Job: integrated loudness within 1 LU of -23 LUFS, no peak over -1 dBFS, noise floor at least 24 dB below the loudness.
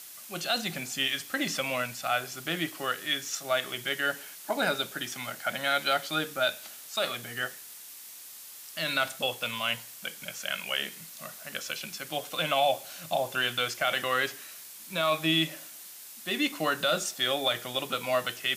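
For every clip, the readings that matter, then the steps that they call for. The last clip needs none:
noise floor -46 dBFS; noise floor target -54 dBFS; loudness -30.0 LUFS; peak -14.5 dBFS; loudness target -23.0 LUFS
-> noise print and reduce 8 dB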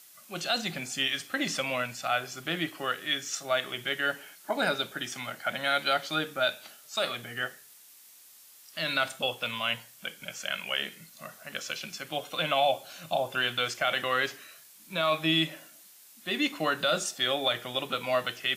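noise floor -54 dBFS; loudness -30.0 LUFS; peak -14.5 dBFS; loudness target -23.0 LUFS
-> gain +7 dB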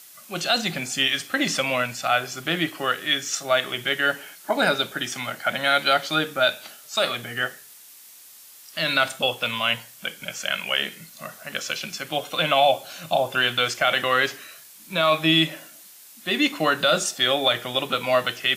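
loudness -23.0 LUFS; peak -7.5 dBFS; noise floor -47 dBFS

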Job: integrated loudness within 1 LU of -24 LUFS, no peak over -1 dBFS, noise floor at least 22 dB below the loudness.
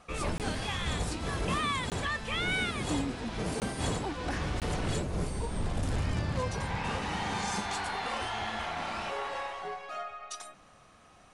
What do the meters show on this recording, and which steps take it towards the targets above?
dropouts 4; longest dropout 18 ms; loudness -33.5 LUFS; peak -18.5 dBFS; loudness target -24.0 LUFS
-> interpolate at 0.38/1.9/3.6/4.6, 18 ms; gain +9.5 dB

